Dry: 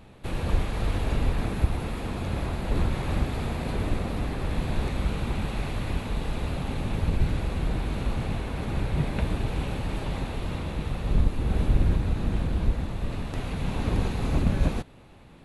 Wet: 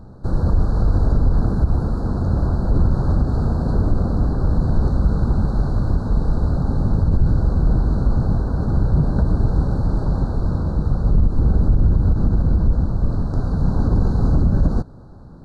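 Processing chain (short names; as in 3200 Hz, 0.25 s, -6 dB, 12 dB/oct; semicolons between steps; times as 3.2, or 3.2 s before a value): elliptic band-stop 1500–4300 Hz, stop band 40 dB; tone controls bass +5 dB, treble +6 dB; limiter -14 dBFS, peak gain reduction 9 dB; tape spacing loss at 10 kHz 23 dB; gain +7 dB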